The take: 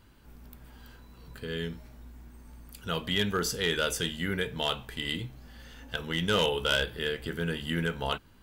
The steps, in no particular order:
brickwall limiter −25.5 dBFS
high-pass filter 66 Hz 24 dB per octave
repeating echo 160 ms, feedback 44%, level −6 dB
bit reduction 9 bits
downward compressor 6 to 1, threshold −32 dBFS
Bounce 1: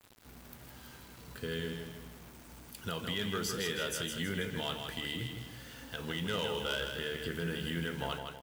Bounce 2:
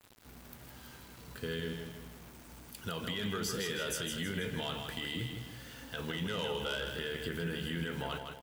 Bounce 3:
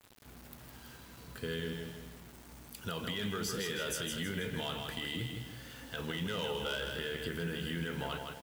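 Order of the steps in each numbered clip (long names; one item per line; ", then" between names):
downward compressor, then brickwall limiter, then high-pass filter, then bit reduction, then repeating echo
high-pass filter, then bit reduction, then brickwall limiter, then downward compressor, then repeating echo
high-pass filter, then brickwall limiter, then repeating echo, then downward compressor, then bit reduction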